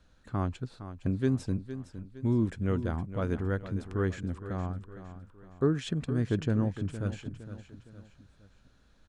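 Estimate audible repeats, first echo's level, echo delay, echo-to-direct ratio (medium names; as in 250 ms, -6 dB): 3, -12.0 dB, 462 ms, -11.0 dB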